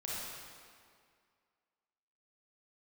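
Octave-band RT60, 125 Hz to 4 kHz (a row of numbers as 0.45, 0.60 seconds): 1.9, 2.2, 2.1, 2.1, 1.9, 1.7 seconds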